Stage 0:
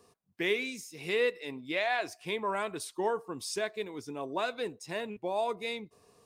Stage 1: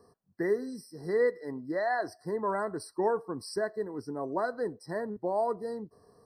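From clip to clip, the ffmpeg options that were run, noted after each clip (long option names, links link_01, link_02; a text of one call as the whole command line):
ffmpeg -i in.wav -af "tiltshelf=frequency=1300:gain=4,afftfilt=real='re*eq(mod(floor(b*sr/1024/2000),2),0)':imag='im*eq(mod(floor(b*sr/1024/2000),2),0)':win_size=1024:overlap=0.75" out.wav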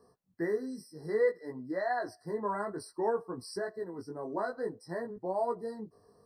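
ffmpeg -i in.wav -af "flanger=delay=16:depth=3.7:speed=0.57" out.wav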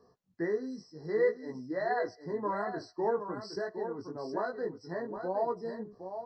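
ffmpeg -i in.wav -af "aecho=1:1:764:0.376,aresample=16000,aresample=44100" out.wav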